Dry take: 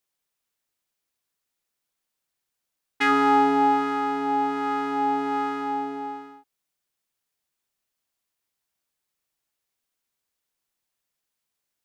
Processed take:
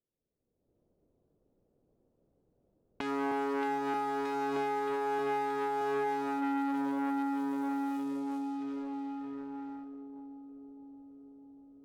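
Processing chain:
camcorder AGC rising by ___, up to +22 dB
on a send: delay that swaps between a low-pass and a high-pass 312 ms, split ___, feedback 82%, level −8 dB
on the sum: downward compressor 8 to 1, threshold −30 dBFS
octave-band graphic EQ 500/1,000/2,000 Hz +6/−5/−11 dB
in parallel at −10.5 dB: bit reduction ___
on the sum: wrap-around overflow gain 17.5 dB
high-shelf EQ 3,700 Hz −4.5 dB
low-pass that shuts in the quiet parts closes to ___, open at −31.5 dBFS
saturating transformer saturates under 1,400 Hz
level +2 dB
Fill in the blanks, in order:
28 dB per second, 1,100 Hz, 7 bits, 340 Hz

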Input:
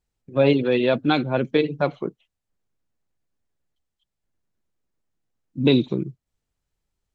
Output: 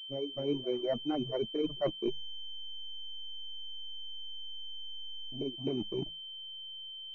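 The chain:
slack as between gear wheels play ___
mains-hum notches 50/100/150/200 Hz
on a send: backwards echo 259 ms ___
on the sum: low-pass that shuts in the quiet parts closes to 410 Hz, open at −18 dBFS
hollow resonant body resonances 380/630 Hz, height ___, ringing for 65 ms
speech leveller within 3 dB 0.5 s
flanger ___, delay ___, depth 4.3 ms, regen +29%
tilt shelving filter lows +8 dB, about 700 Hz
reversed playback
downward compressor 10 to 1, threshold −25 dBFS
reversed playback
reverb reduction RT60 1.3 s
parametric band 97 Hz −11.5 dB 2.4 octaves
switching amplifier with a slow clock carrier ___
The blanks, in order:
−25 dBFS, −16.5 dB, 8 dB, 1.8 Hz, 6 ms, 3,100 Hz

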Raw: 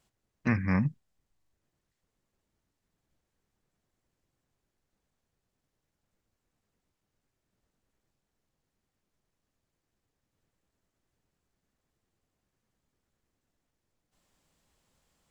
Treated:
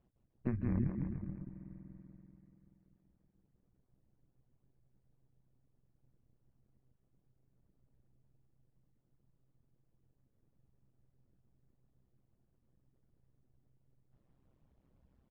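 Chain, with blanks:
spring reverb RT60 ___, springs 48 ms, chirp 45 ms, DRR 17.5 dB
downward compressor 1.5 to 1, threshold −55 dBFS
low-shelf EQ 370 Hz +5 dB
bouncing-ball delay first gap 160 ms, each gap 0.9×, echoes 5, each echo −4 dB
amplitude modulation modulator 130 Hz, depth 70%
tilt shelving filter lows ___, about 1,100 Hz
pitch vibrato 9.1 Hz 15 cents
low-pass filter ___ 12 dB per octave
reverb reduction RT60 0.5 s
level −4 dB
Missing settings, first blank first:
3.2 s, +8.5 dB, 3,300 Hz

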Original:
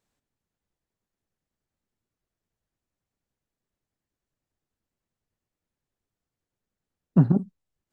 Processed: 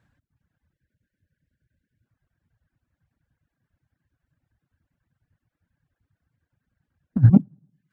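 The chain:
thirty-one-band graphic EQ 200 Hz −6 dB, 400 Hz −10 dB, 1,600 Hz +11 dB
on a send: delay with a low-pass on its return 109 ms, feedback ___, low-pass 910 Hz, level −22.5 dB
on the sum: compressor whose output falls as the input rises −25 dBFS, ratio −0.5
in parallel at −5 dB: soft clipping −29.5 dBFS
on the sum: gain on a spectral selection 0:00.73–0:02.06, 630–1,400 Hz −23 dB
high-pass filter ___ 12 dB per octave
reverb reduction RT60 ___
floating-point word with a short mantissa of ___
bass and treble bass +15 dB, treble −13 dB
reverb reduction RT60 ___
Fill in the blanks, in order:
44%, 69 Hz, 0.73 s, 4 bits, 0.58 s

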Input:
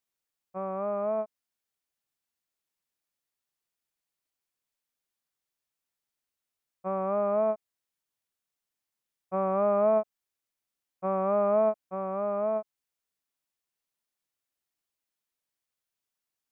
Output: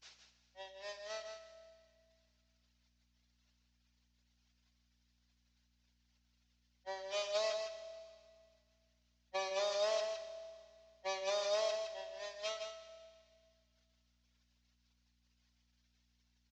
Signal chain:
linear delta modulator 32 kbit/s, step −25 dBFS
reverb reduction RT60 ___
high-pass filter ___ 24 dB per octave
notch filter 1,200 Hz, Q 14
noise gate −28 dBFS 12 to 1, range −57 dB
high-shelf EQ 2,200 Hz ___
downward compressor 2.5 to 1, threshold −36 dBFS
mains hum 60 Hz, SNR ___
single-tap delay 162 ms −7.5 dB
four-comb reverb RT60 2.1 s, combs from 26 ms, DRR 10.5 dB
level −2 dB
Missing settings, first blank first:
1.3 s, 390 Hz, +9.5 dB, 33 dB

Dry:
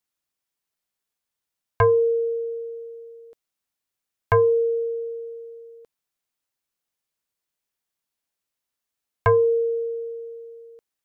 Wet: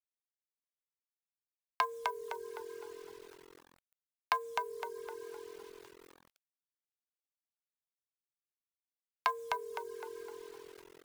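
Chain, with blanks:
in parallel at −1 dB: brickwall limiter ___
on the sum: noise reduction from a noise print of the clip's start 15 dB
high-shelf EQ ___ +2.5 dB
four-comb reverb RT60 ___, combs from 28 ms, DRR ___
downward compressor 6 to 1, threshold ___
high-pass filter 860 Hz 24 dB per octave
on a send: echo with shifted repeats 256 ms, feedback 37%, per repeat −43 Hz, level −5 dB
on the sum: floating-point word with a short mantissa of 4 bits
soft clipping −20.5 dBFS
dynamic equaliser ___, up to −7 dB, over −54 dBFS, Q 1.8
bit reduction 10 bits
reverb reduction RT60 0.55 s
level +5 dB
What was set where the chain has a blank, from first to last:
−20.5 dBFS, 2,200 Hz, 3.1 s, 18 dB, −27 dBFS, 1,600 Hz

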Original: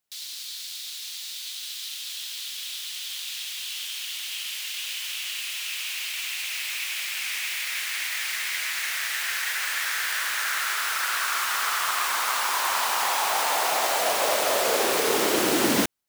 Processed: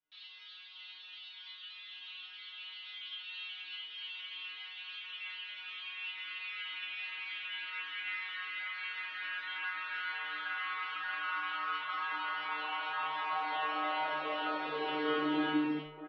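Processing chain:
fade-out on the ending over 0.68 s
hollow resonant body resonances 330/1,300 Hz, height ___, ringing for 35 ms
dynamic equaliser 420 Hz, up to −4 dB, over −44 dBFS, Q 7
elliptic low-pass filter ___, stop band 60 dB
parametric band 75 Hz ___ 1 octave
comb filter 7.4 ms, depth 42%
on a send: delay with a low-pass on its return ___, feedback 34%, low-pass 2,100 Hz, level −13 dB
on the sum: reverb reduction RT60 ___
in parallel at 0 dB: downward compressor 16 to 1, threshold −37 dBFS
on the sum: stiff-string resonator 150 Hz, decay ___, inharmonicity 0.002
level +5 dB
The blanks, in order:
9 dB, 3,400 Hz, −9.5 dB, 636 ms, 0.95 s, 0.79 s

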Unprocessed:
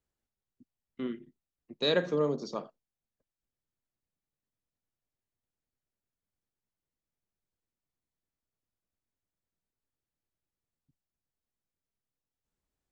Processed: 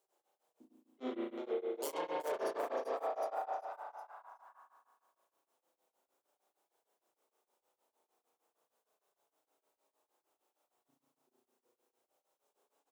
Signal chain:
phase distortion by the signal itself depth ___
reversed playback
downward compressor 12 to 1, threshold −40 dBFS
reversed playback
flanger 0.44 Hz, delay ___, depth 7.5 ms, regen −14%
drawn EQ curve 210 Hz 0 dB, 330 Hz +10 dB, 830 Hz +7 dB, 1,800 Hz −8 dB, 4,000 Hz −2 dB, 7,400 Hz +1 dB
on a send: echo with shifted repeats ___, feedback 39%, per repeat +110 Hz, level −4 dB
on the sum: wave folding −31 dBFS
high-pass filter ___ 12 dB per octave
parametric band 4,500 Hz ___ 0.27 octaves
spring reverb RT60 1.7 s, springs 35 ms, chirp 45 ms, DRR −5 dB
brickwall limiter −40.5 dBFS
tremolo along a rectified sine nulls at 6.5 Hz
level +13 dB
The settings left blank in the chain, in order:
0.43 ms, 4.9 ms, 380 ms, 690 Hz, −2.5 dB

